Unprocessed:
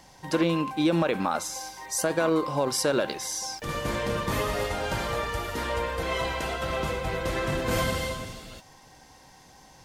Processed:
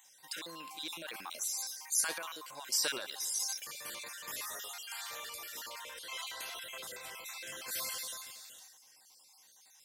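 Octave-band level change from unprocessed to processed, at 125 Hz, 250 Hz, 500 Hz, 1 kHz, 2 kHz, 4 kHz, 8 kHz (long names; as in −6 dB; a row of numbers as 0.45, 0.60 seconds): −35.0, −28.0, −23.0, −17.0, −11.0, −4.5, −1.5 decibels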